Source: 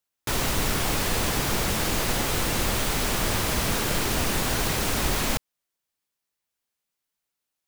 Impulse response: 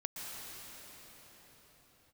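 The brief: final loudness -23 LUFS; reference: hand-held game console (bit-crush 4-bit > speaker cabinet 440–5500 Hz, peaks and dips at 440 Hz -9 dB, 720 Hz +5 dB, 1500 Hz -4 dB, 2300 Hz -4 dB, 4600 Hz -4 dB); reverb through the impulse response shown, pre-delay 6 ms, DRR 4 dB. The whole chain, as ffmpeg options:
-filter_complex "[0:a]asplit=2[a][b];[1:a]atrim=start_sample=2205,adelay=6[c];[b][c]afir=irnorm=-1:irlink=0,volume=-5.5dB[d];[a][d]amix=inputs=2:normalize=0,acrusher=bits=3:mix=0:aa=0.000001,highpass=440,equalizer=f=440:t=q:w=4:g=-9,equalizer=f=720:t=q:w=4:g=5,equalizer=f=1.5k:t=q:w=4:g=-4,equalizer=f=2.3k:t=q:w=4:g=-4,equalizer=f=4.6k:t=q:w=4:g=-4,lowpass=f=5.5k:w=0.5412,lowpass=f=5.5k:w=1.3066,volume=4dB"

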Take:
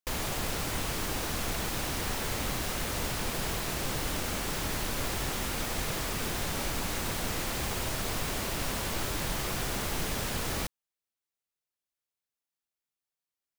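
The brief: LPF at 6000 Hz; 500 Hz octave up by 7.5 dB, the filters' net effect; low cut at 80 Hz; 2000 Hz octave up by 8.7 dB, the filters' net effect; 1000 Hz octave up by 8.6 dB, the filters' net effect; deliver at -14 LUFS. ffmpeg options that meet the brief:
-af "highpass=80,lowpass=6k,equalizer=f=500:t=o:g=7,equalizer=f=1k:t=o:g=6.5,equalizer=f=2k:t=o:g=8.5,volume=14dB"

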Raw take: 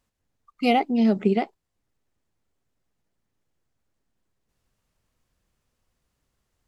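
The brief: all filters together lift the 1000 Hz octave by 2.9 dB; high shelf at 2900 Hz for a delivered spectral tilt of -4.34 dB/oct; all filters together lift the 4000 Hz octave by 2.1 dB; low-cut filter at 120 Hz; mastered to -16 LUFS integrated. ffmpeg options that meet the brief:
-af "highpass=120,equalizer=f=1k:t=o:g=5,highshelf=f=2.9k:g=-5,equalizer=f=4k:t=o:g=7,volume=6dB"

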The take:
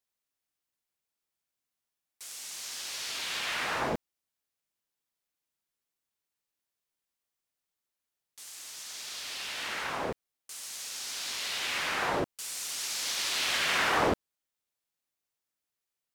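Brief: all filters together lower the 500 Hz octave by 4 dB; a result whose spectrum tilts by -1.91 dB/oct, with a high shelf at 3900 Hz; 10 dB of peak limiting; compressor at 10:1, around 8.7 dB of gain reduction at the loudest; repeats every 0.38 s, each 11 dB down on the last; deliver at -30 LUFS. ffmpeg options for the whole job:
-af "equalizer=f=500:t=o:g=-5,highshelf=f=3.9k:g=-5,acompressor=threshold=-33dB:ratio=10,alimiter=level_in=10dB:limit=-24dB:level=0:latency=1,volume=-10dB,aecho=1:1:380|760|1140:0.282|0.0789|0.0221,volume=11.5dB"

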